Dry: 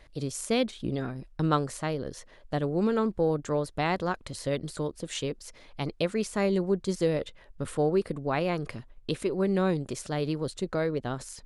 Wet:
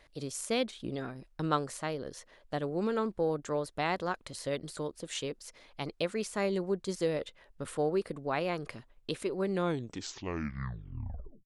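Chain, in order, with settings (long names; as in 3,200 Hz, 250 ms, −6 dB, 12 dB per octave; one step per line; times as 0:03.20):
turntable brake at the end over 1.94 s
low-shelf EQ 240 Hz −8 dB
level −2.5 dB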